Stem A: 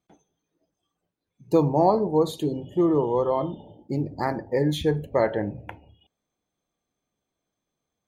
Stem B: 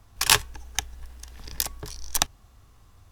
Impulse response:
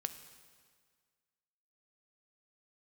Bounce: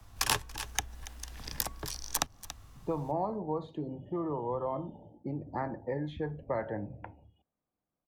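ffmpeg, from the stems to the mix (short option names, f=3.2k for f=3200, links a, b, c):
-filter_complex "[0:a]lowpass=1.5k,adelay=1350,volume=-5dB[a];[1:a]volume=1dB,asplit=2[b][c];[c]volume=-21dB,aecho=0:1:282:1[d];[a][b][d]amix=inputs=3:normalize=0,equalizer=f=410:w=3.6:g=-4.5,acrossover=split=91|210|610|1400[e][f][g][h][i];[e]acompressor=threshold=-45dB:ratio=4[j];[f]acompressor=threshold=-44dB:ratio=4[k];[g]acompressor=threshold=-38dB:ratio=4[l];[h]acompressor=threshold=-35dB:ratio=4[m];[i]acompressor=threshold=-30dB:ratio=4[n];[j][k][l][m][n]amix=inputs=5:normalize=0"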